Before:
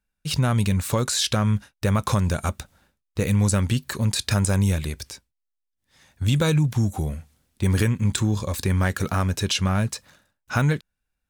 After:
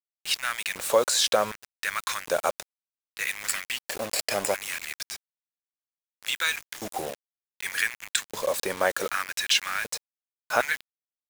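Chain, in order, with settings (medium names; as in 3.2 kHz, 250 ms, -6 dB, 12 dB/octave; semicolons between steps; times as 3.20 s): 3.36–5.00 s: comb filter that takes the minimum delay 0.41 ms; LFO high-pass square 0.66 Hz 550–1800 Hz; bit crusher 6-bit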